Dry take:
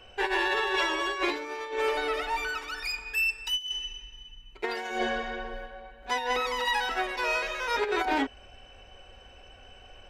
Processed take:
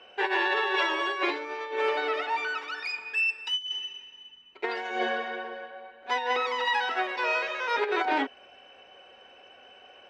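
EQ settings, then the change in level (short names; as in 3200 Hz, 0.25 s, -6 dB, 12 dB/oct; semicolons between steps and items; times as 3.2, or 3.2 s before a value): BPF 310–3900 Hz; +1.5 dB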